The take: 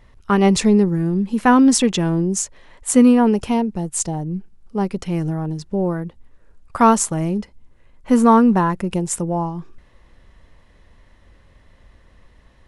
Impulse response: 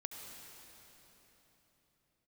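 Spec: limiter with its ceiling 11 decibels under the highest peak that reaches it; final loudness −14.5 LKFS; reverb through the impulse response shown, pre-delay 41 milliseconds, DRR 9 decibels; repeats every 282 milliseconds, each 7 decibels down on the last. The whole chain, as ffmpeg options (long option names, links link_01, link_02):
-filter_complex "[0:a]alimiter=limit=-12.5dB:level=0:latency=1,aecho=1:1:282|564|846|1128|1410:0.447|0.201|0.0905|0.0407|0.0183,asplit=2[link_01][link_02];[1:a]atrim=start_sample=2205,adelay=41[link_03];[link_02][link_03]afir=irnorm=-1:irlink=0,volume=-7dB[link_04];[link_01][link_04]amix=inputs=2:normalize=0,volume=6.5dB"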